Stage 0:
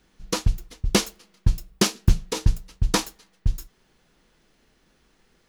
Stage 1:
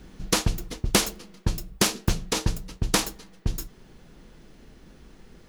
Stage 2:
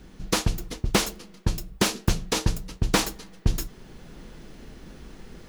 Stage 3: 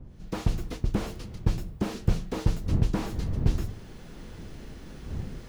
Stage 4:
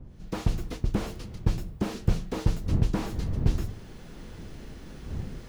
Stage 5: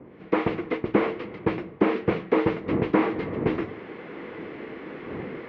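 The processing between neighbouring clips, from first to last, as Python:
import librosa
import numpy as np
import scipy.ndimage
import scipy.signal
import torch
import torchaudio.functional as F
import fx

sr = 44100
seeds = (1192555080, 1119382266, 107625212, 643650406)

y1 = fx.low_shelf(x, sr, hz=500.0, db=11.0)
y1 = fx.rider(y1, sr, range_db=5, speed_s=2.0)
y1 = fx.spectral_comp(y1, sr, ratio=2.0)
y1 = y1 * librosa.db_to_amplitude(-6.5)
y2 = fx.rider(y1, sr, range_db=10, speed_s=2.0)
y2 = fx.slew_limit(y2, sr, full_power_hz=420.0)
y3 = fx.fade_in_head(y2, sr, length_s=0.52)
y3 = fx.dmg_wind(y3, sr, seeds[0], corner_hz=120.0, level_db=-35.0)
y3 = fx.slew_limit(y3, sr, full_power_hz=29.0)
y4 = y3
y5 = fx.cabinet(y4, sr, low_hz=280.0, low_slope=12, high_hz=2700.0, hz=(320.0, 460.0, 1100.0, 2100.0), db=(6, 7, 5, 8))
y5 = y5 * librosa.db_to_amplitude(8.5)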